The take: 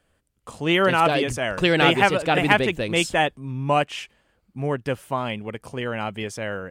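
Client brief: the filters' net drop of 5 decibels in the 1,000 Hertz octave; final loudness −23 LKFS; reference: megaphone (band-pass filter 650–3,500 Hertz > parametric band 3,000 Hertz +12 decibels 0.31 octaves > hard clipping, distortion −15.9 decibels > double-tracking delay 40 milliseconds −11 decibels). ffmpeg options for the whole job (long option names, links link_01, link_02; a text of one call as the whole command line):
ffmpeg -i in.wav -filter_complex "[0:a]highpass=650,lowpass=3500,equalizer=frequency=1000:width_type=o:gain=-5.5,equalizer=frequency=3000:width_type=o:width=0.31:gain=12,asoftclip=type=hard:threshold=-10.5dB,asplit=2[link_01][link_02];[link_02]adelay=40,volume=-11dB[link_03];[link_01][link_03]amix=inputs=2:normalize=0,volume=-0.5dB" out.wav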